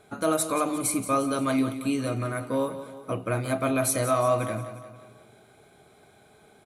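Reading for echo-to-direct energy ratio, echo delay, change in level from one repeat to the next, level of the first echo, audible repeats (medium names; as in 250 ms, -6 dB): -10.5 dB, 177 ms, -6.0 dB, -12.0 dB, 4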